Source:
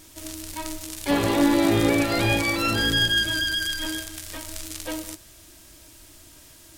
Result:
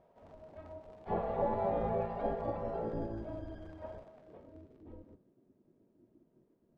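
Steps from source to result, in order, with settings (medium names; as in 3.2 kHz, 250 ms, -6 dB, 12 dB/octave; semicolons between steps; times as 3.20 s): de-hum 46.1 Hz, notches 38; spectral gate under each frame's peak -10 dB weak; low-pass sweep 670 Hz -> 330 Hz, 4.03–4.85 s; trim -7 dB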